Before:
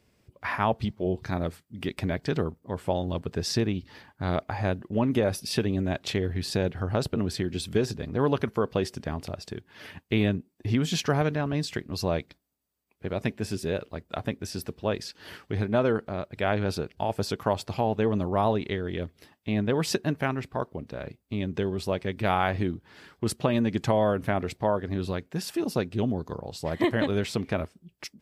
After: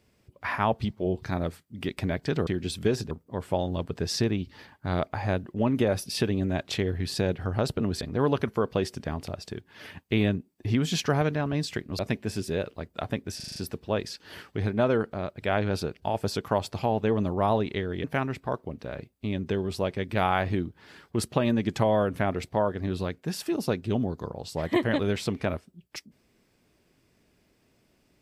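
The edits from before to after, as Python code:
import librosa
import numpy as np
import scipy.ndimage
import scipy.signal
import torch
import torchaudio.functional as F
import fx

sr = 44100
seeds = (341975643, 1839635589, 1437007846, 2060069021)

y = fx.edit(x, sr, fx.move(start_s=7.37, length_s=0.64, to_s=2.47),
    fx.cut(start_s=11.99, length_s=1.15),
    fx.stutter(start_s=14.51, slice_s=0.04, count=6),
    fx.cut(start_s=18.99, length_s=1.13), tone=tone)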